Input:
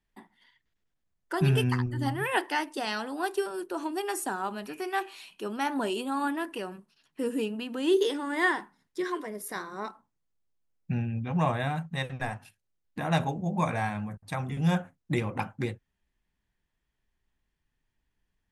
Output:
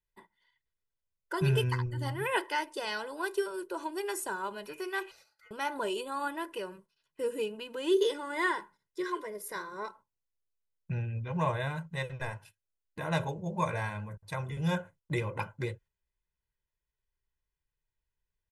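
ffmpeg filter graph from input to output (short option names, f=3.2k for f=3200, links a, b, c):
-filter_complex "[0:a]asettb=1/sr,asplit=3[a][b][c];[a]atrim=end=5.114[d];[b]atrim=start=5.11:end=5.51,asetpts=PTS-STARTPTS,afade=t=in:d=0.004:c=qsin,afade=t=out:st=0.396:d=0.004:c=qsin,acompressor=threshold=-51dB:ratio=4:attack=3.2:release=140:knee=1:detection=peak,aeval=exprs='val(0)*sin(2*PI*1700*n/s)':c=same,asuperstop=centerf=990:order=8:qfactor=4.5[e];[c]atrim=start=5.506[f];[d][e]acrossfade=d=0.004:c1=hsin:c2=qsin[g];[g][f]acrossfade=d=0.004:c1=qsin:c2=hsin,agate=range=-8dB:threshold=-52dB:ratio=16:detection=peak,aecho=1:1:2:0.74,volume=-4.5dB"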